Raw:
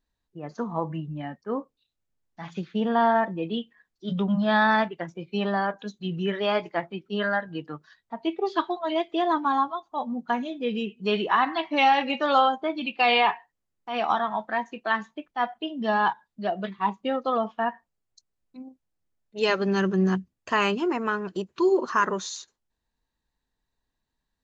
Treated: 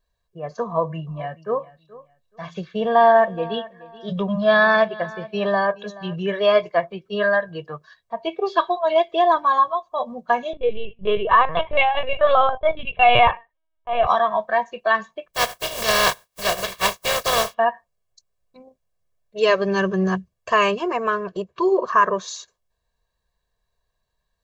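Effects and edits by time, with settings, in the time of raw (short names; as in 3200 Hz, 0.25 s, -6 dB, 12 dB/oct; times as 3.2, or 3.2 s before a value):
0.64–6.16 feedback echo 0.427 s, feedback 24%, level -19.5 dB
10.53–14.07 LPC vocoder at 8 kHz pitch kept
15.33–17.53 spectral contrast lowered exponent 0.25
21.24–22.28 high shelf 4700 Hz -10.5 dB
whole clip: bell 740 Hz +6 dB 0.83 oct; comb 1.8 ms, depth 86%; gain +1.5 dB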